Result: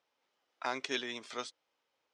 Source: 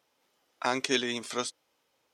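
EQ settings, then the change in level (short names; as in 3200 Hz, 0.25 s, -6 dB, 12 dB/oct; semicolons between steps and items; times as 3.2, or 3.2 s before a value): air absorption 94 m; low shelf 330 Hz -9.5 dB; -5.0 dB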